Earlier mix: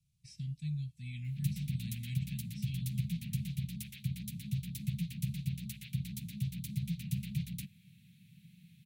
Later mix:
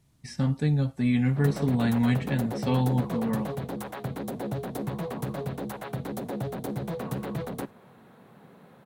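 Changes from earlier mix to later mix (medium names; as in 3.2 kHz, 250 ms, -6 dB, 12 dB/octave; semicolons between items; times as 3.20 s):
speech +11.5 dB; master: remove Chebyshev band-stop 180–2400 Hz, order 4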